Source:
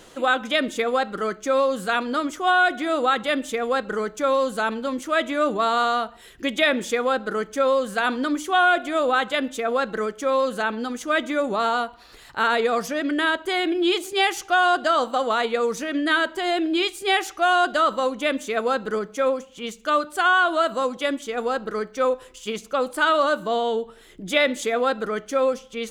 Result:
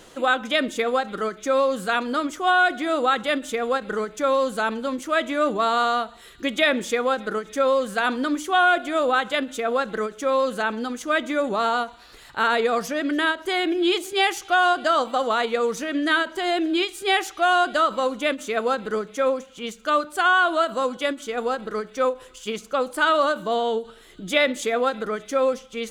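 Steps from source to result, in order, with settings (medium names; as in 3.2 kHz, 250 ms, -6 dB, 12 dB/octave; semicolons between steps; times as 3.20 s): feedback echo behind a high-pass 289 ms, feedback 73%, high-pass 2.9 kHz, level -22.5 dB; endings held to a fixed fall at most 270 dB/s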